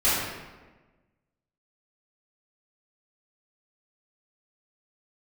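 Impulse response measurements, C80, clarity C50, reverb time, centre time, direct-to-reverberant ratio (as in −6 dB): 1.5 dB, −1.5 dB, 1.3 s, 93 ms, −14.0 dB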